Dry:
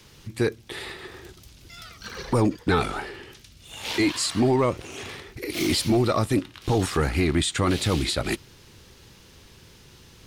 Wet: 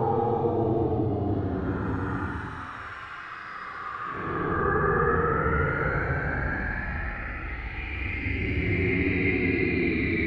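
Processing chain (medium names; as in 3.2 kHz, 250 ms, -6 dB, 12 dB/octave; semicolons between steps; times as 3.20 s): LFO low-pass saw up 0.66 Hz 590–3100 Hz; Paulstretch 19×, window 0.05 s, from 6.73 s; trim -5.5 dB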